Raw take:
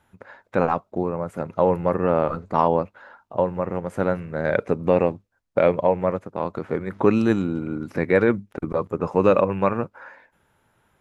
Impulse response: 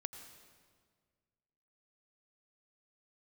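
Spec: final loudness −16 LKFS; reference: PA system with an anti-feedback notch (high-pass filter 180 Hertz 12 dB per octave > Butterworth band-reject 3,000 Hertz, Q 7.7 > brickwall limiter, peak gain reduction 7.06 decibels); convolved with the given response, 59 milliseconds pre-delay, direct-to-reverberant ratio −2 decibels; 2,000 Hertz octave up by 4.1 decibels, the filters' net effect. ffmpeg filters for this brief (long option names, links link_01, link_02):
-filter_complex "[0:a]equalizer=frequency=2000:width_type=o:gain=5.5,asplit=2[link_01][link_02];[1:a]atrim=start_sample=2205,adelay=59[link_03];[link_02][link_03]afir=irnorm=-1:irlink=0,volume=4.5dB[link_04];[link_01][link_04]amix=inputs=2:normalize=0,highpass=180,asuperstop=centerf=3000:order=8:qfactor=7.7,volume=4.5dB,alimiter=limit=-2dB:level=0:latency=1"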